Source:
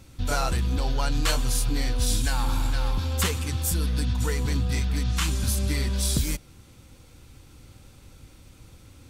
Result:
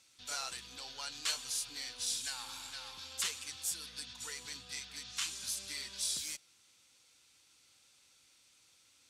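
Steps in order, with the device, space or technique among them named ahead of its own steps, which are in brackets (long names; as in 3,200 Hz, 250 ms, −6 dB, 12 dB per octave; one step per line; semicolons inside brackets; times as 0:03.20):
piezo pickup straight into a mixer (low-pass filter 6,000 Hz 12 dB per octave; first difference)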